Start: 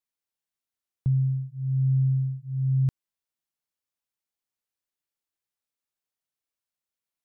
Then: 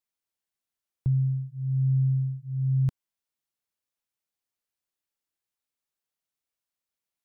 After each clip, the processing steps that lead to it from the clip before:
dynamic equaliser 250 Hz, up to −7 dB, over −45 dBFS, Q 2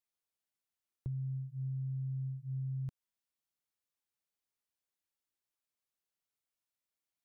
brickwall limiter −24.5 dBFS, peak gain reduction 6 dB
downward compressor, threshold −32 dBFS, peak gain reduction 5.5 dB
level −4 dB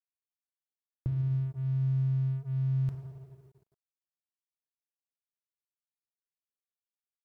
convolution reverb RT60 2.6 s, pre-delay 3 ms, DRR 5 dB
dead-zone distortion −59.5 dBFS
level +8 dB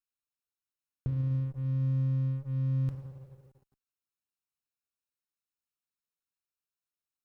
lower of the sound and its delayed copy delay 0.75 ms

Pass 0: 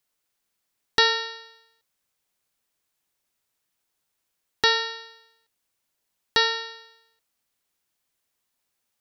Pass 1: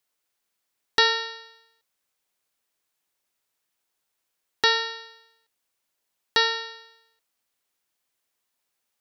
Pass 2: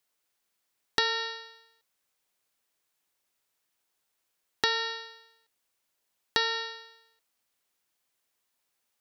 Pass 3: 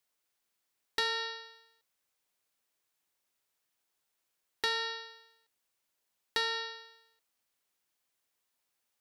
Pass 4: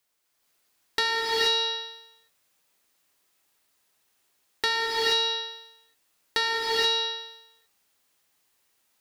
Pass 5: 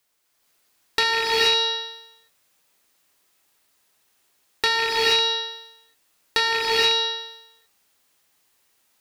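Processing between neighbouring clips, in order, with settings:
bass and treble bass −6 dB, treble −1 dB
downward compressor 4 to 1, threshold −24 dBFS, peak gain reduction 8.5 dB
soft clipping −19 dBFS, distortion −14 dB; level −3 dB
reverb whose tail is shaped and stops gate 500 ms rising, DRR −4.5 dB; level +5.5 dB
loose part that buzzes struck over −46 dBFS, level −21 dBFS; level +4.5 dB

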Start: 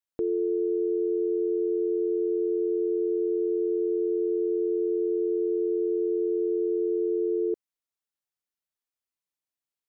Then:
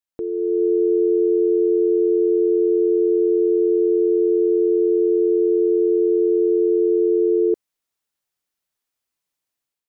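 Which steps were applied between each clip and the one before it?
automatic gain control gain up to 9 dB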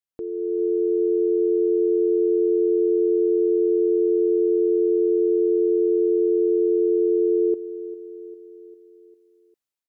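repeating echo 400 ms, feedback 58%, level −17.5 dB
level −4.5 dB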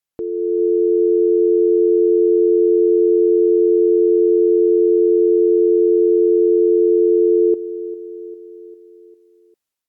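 level +6 dB
Opus 64 kbit/s 48,000 Hz

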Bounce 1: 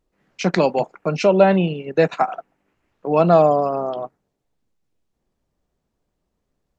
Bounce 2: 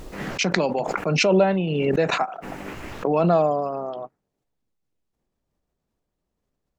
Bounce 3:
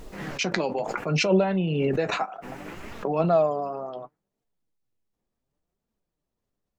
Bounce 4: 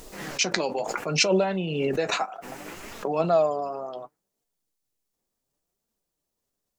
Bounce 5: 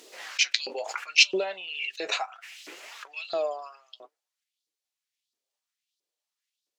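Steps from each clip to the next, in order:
background raised ahead of every attack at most 22 dB per second; level −6 dB
flanger 0.68 Hz, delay 4.1 ms, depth 6.2 ms, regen +54%
bass and treble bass −6 dB, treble +10 dB
auto-filter high-pass saw up 1.5 Hz 300–4,500 Hz; meter weighting curve D; level −10.5 dB

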